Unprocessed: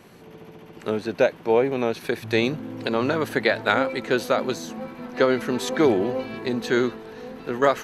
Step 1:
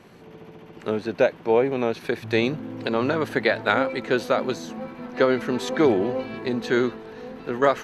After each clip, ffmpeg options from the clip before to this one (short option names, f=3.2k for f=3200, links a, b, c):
-af "highshelf=f=7.5k:g=-10"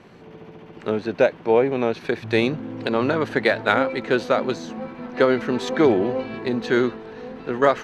-af "adynamicsmooth=sensitivity=2:basefreq=7.5k,volume=2dB"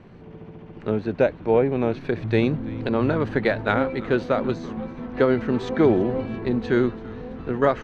-filter_complex "[0:a]aemphasis=mode=reproduction:type=bsi,asplit=7[a][b][c][d][e][f][g];[b]adelay=334,afreqshift=-140,volume=-19dB[h];[c]adelay=668,afreqshift=-280,volume=-22.9dB[i];[d]adelay=1002,afreqshift=-420,volume=-26.8dB[j];[e]adelay=1336,afreqshift=-560,volume=-30.6dB[k];[f]adelay=1670,afreqshift=-700,volume=-34.5dB[l];[g]adelay=2004,afreqshift=-840,volume=-38.4dB[m];[a][h][i][j][k][l][m]amix=inputs=7:normalize=0,volume=-3.5dB"